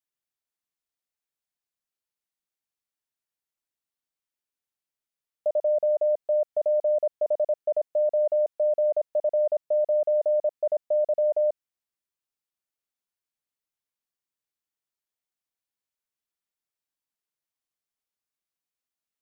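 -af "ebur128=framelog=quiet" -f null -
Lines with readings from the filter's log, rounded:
Integrated loudness:
  I:         -25.2 LUFS
  Threshold: -35.2 LUFS
Loudness range:
  LRA:         7.5 LU
  Threshold: -46.7 LUFS
  LRA low:   -32.3 LUFS
  LRA high:  -24.8 LUFS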